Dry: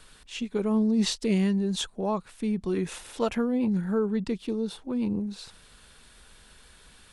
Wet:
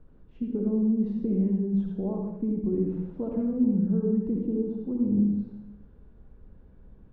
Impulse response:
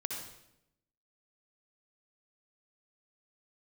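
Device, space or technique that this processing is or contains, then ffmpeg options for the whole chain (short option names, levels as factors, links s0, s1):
television next door: -filter_complex "[0:a]acompressor=threshold=0.0398:ratio=4,lowpass=360[s0];[1:a]atrim=start_sample=2205[s1];[s0][s1]afir=irnorm=-1:irlink=0,volume=1.78"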